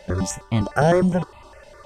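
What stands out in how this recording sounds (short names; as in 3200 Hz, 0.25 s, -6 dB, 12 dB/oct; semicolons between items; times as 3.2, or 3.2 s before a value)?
notches that jump at a steady rate 9.8 Hz 310–1600 Hz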